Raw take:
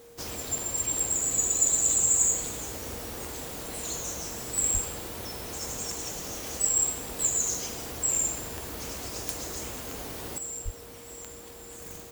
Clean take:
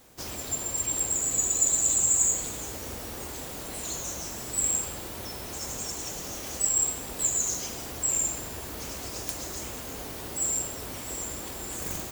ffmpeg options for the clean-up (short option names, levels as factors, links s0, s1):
-filter_complex "[0:a]adeclick=t=4,bandreject=f=470:w=30,asplit=3[s0][s1][s2];[s0]afade=t=out:st=4.73:d=0.02[s3];[s1]highpass=f=140:w=0.5412,highpass=f=140:w=1.3066,afade=t=in:st=4.73:d=0.02,afade=t=out:st=4.85:d=0.02[s4];[s2]afade=t=in:st=4.85:d=0.02[s5];[s3][s4][s5]amix=inputs=3:normalize=0,asplit=3[s6][s7][s8];[s6]afade=t=out:st=10.64:d=0.02[s9];[s7]highpass=f=140:w=0.5412,highpass=f=140:w=1.3066,afade=t=in:st=10.64:d=0.02,afade=t=out:st=10.76:d=0.02[s10];[s8]afade=t=in:st=10.76:d=0.02[s11];[s9][s10][s11]amix=inputs=3:normalize=0,asetnsamples=n=441:p=0,asendcmd='10.38 volume volume 9dB',volume=1"